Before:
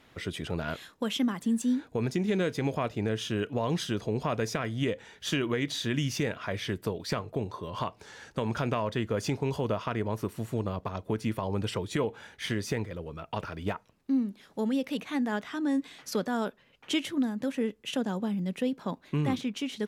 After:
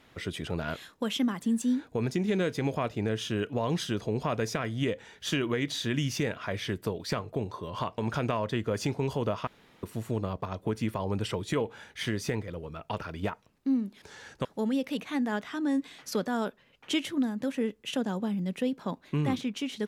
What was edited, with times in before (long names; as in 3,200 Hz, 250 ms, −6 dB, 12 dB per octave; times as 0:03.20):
0:07.98–0:08.41: move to 0:14.45
0:09.90–0:10.26: fill with room tone